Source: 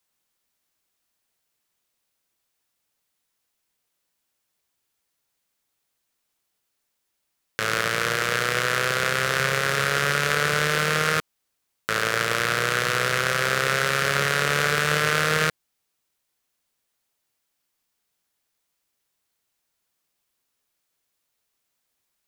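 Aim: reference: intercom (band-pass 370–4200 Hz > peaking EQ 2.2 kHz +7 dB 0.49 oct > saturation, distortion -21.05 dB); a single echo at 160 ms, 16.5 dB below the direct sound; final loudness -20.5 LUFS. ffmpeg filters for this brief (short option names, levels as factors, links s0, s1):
-af "highpass=370,lowpass=4200,equalizer=f=2200:t=o:w=0.49:g=7,aecho=1:1:160:0.15,asoftclip=threshold=0.447,volume=1.12"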